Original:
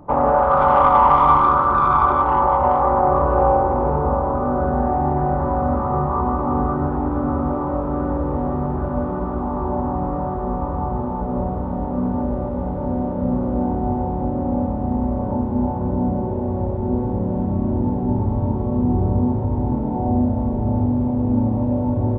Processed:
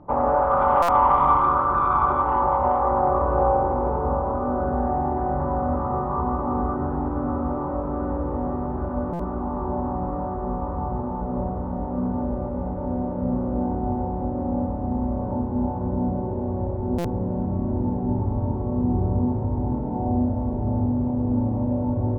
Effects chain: Bessel low-pass 2200 Hz, order 2; de-hum 72.36 Hz, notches 39; stuck buffer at 0.82/9.13/16.98, samples 256, times 10; gain -3.5 dB

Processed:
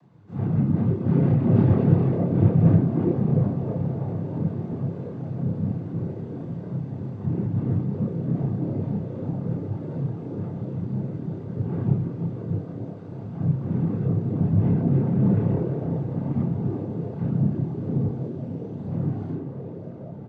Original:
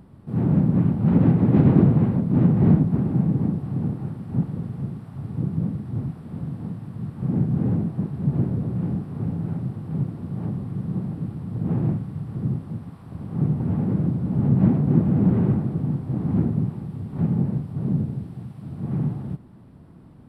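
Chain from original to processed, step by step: frequency-shifting echo 0.325 s, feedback 47%, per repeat +130 Hz, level -10 dB; noise vocoder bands 16; chorus voices 6, 0.42 Hz, delay 30 ms, depth 1.4 ms; diffused feedback echo 1.574 s, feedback 64%, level -14 dB

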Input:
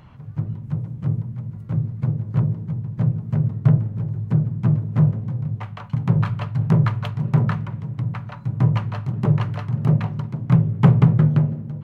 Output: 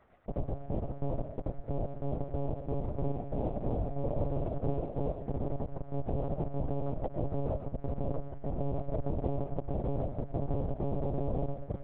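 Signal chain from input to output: Wiener smoothing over 15 samples; de-hum 329.3 Hz, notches 5; reverb removal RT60 0.96 s; Schmitt trigger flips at -29.5 dBFS; added noise white -35 dBFS; ladder low-pass 740 Hz, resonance 45%; crossover distortion -52.5 dBFS; 2.74–5.09 flutter echo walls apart 8.6 m, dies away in 0.63 s; reverb RT60 0.45 s, pre-delay 70 ms, DRR 8 dB; monotone LPC vocoder at 8 kHz 140 Hz; ending taper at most 480 dB/s

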